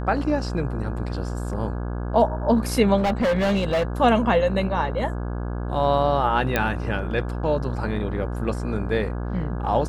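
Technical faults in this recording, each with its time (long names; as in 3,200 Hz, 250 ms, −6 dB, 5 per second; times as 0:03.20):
mains buzz 60 Hz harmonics 28 −28 dBFS
0:02.97–0:03.83: clipping −18 dBFS
0:06.56: click −7 dBFS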